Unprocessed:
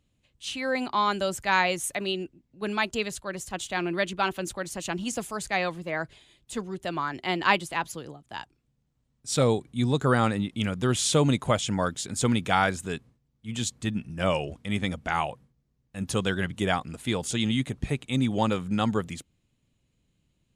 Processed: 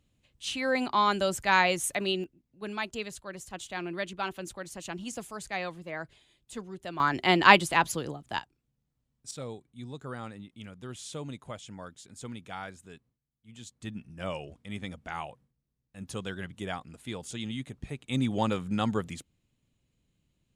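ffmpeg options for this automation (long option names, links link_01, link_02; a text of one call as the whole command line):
ffmpeg -i in.wav -af "asetnsamples=nb_out_samples=441:pad=0,asendcmd='2.24 volume volume -7dB;7 volume volume 5dB;8.39 volume volume -6dB;9.31 volume volume -17dB;13.81 volume volume -10dB;18.08 volume volume -3dB',volume=0dB" out.wav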